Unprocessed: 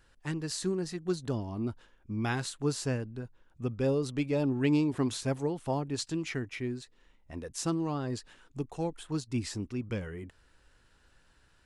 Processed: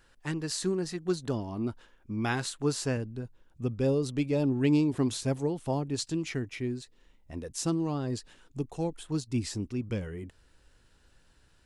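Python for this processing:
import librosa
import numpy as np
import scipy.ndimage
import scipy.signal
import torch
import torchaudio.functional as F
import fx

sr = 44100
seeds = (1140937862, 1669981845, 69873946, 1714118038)

y = fx.peak_eq(x, sr, hz=fx.steps((0.0, 66.0), (2.97, 1400.0)), db=-5.0, octaves=2.0)
y = F.gain(torch.from_numpy(y), 2.5).numpy()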